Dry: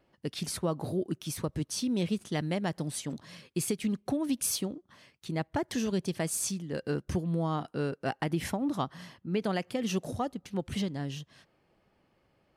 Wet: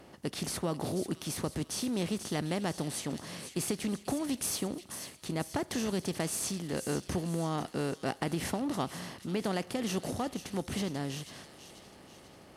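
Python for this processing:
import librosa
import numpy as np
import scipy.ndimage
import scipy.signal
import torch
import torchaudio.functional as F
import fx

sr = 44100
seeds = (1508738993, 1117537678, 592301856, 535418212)

y = fx.bin_compress(x, sr, power=0.6)
y = fx.echo_wet_highpass(y, sr, ms=489, feedback_pct=52, hz=2600.0, wet_db=-9.0)
y = y * librosa.db_to_amplitude(-5.0)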